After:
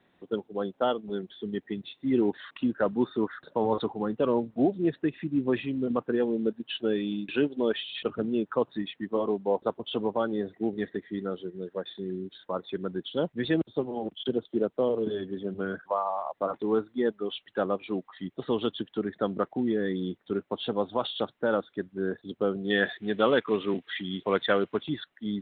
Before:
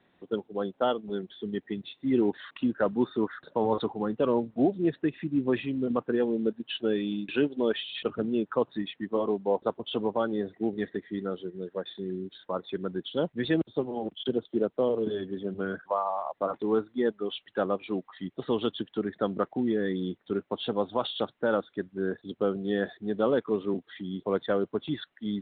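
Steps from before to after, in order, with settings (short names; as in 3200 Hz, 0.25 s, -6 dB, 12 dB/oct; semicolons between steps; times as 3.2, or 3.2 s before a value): 22.7–24.83 bell 2500 Hz +14 dB 1.9 oct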